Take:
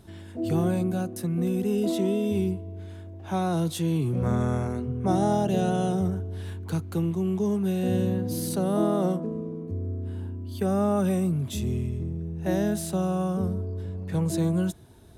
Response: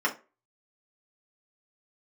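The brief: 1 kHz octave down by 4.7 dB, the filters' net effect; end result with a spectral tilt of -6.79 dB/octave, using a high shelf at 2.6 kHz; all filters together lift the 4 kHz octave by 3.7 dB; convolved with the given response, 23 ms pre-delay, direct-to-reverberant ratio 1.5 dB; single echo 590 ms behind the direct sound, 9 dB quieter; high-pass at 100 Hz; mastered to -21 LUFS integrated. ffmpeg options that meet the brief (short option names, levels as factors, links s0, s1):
-filter_complex "[0:a]highpass=100,equalizer=f=1000:t=o:g=-7,highshelf=f=2600:g=-4,equalizer=f=4000:t=o:g=8,aecho=1:1:590:0.355,asplit=2[s0][s1];[1:a]atrim=start_sample=2205,adelay=23[s2];[s1][s2]afir=irnorm=-1:irlink=0,volume=0.224[s3];[s0][s3]amix=inputs=2:normalize=0,volume=1.88"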